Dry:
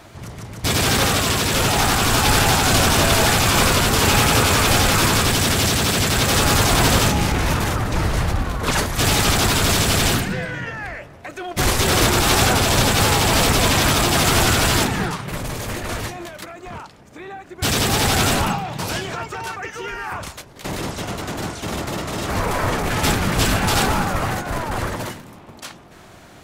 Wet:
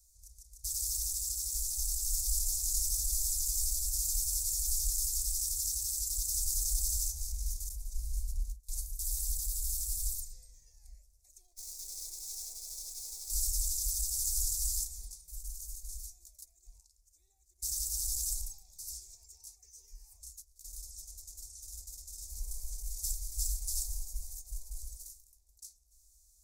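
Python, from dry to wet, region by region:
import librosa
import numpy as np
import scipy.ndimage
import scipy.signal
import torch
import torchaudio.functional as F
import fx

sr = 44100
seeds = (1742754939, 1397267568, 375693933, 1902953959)

y = fx.chain(x, sr, fx.dynamic_eq(hz=6000.0, q=1.1, threshold_db=-37.0, ratio=4.0, max_db=-6),
    fx.gate_hold(open_db=-11.0, close_db=-20.0, hold_ms=71.0, range_db=-21, attack_ms=1.4, release_ms=100.0), at=(7.69, 10.17))
y = fx.chain(y, sr, fx.highpass(hz=260.0, slope=12),
    fx.high_shelf(hz=5900.0, db=-11.0),
    fx.running_max(window=3), at=(11.45, 13.3))
y = scipy.signal.sosfilt(scipy.signal.cheby2(4, 40, [100.0, 3200.0], 'bandstop', fs=sr, output='sos'), y)
y = fx.peak_eq(y, sr, hz=1400.0, db=-10.0, octaves=0.6)
y = y * 10.0 ** (-8.0 / 20.0)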